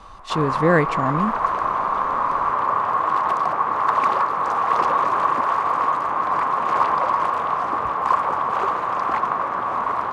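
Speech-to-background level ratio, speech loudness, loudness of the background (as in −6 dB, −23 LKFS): −1.0 dB, −22.0 LKFS, −21.0 LKFS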